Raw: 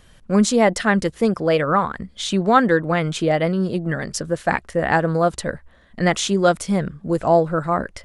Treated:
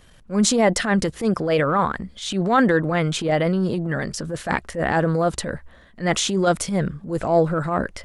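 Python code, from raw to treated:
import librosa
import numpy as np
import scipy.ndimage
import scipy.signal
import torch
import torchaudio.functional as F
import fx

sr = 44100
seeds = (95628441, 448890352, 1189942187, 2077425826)

y = fx.transient(x, sr, attack_db=-10, sustain_db=4)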